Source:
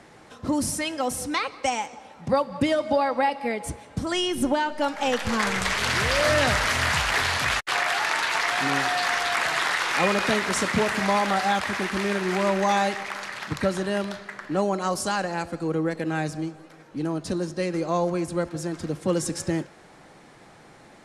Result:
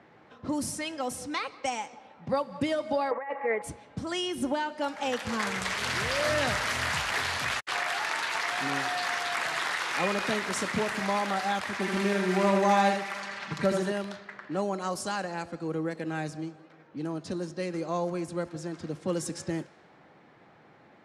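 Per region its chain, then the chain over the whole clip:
3.11–3.62 s: compressor with a negative ratio -26 dBFS, ratio -0.5 + cabinet simulation 220–2100 Hz, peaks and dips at 250 Hz -9 dB, 470 Hz +8 dB, 1.1 kHz +7 dB, 1.9 kHz +10 dB
11.79–13.92 s: comb 5.1 ms, depth 66% + delay 81 ms -5 dB
whole clip: high-pass 88 Hz; level-controlled noise filter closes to 2.7 kHz, open at -21.5 dBFS; trim -6 dB

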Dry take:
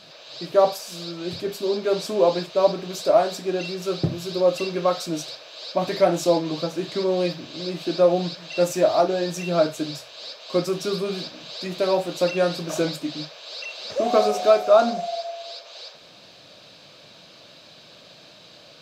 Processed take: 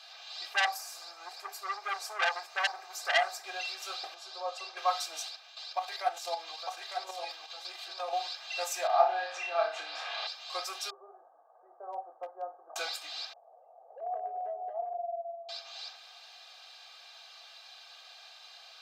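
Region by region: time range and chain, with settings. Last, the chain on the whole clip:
0.53–3.44 s: peaking EQ 3.3 kHz -12.5 dB 0.78 oct + transformer saturation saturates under 2.8 kHz
4.14–4.77 s: band-pass 350–5600 Hz + peaking EQ 2.5 kHz -9 dB 1.7 oct
5.28–8.13 s: level held to a coarse grid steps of 10 dB + delay 902 ms -6.5 dB
8.87–10.27 s: low-pass 2.4 kHz + upward compressor, threshold -20 dBFS + flutter echo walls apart 5.1 m, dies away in 0.37 s
10.90–12.76 s: Gaussian low-pass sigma 11 samples + hard clipper -15 dBFS
13.33–15.49 s: steep low-pass 700 Hz + compression 5:1, threshold -24 dBFS + tape noise reduction on one side only encoder only
whole clip: Chebyshev high-pass 690 Hz, order 4; comb 2.5 ms, depth 72%; trim -4.5 dB

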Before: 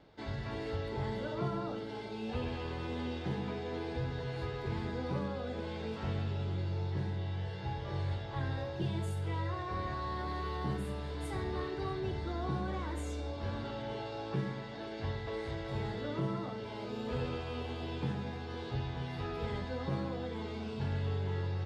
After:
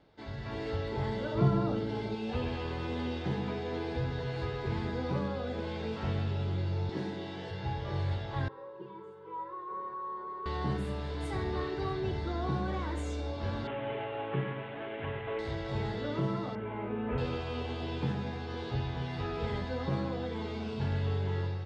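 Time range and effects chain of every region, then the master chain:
1.35–2.15 s: high-pass 47 Hz + bass shelf 260 Hz +11 dB
6.89–7.51 s: resonant high-pass 250 Hz, resonance Q 2 + treble shelf 4.8 kHz +6.5 dB
8.48–10.46 s: two resonant band-passes 690 Hz, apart 1.1 oct + comb 5.3 ms, depth 62%
13.67–15.39 s: CVSD coder 16 kbps + bass shelf 97 Hz -11 dB + comb 7.3 ms, depth 47%
16.55–17.18 s: steep low-pass 2.6 kHz + doubling 19 ms -5 dB
whole clip: low-pass 7.4 kHz 12 dB/octave; level rider gain up to 6 dB; trim -3 dB

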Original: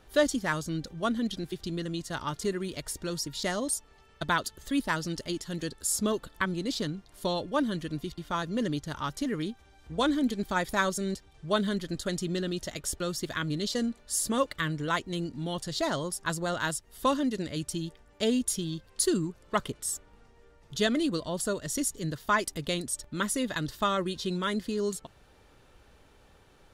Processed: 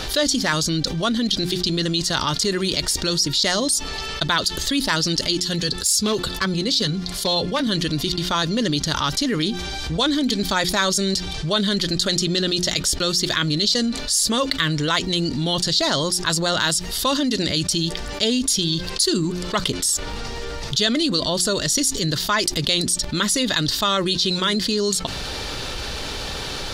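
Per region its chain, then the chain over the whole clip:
5.40–7.67 s: overload inside the chain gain 22.5 dB + comb of notches 310 Hz + three bands expanded up and down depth 40%
whole clip: peaking EQ 4.5 kHz +14 dB 1.3 oct; de-hum 89.58 Hz, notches 4; level flattener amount 70%

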